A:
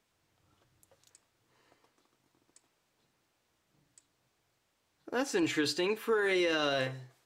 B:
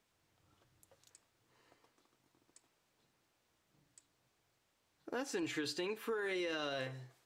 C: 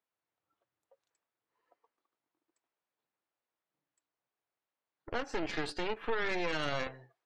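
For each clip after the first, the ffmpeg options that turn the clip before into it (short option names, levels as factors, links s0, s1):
-af "acompressor=threshold=0.0141:ratio=2.5,volume=0.794"
-af "bandpass=f=1000:t=q:w=0.52:csg=0,aeval=exprs='0.0398*(cos(1*acos(clip(val(0)/0.0398,-1,1)))-cos(1*PI/2))+0.0178*(cos(2*acos(clip(val(0)/0.0398,-1,1)))-cos(2*PI/2))+0.00631*(cos(4*acos(clip(val(0)/0.0398,-1,1)))-cos(4*PI/2))+0.0112*(cos(6*acos(clip(val(0)/0.0398,-1,1)))-cos(6*PI/2))':c=same,afftdn=nr=17:nf=-61,volume=1.88"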